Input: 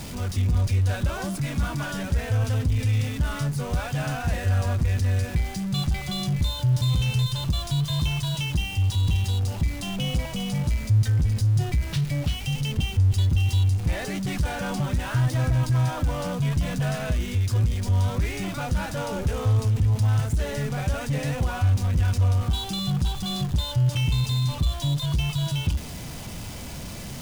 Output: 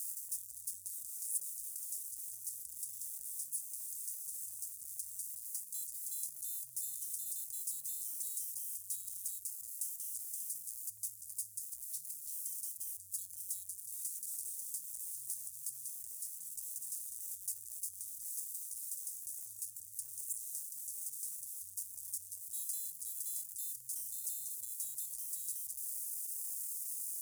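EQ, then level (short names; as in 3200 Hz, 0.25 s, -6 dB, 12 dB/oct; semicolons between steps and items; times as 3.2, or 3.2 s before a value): inverse Chebyshev high-pass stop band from 2700 Hz, stop band 60 dB; bell 12000 Hz +2.5 dB 0.66 oct; +5.0 dB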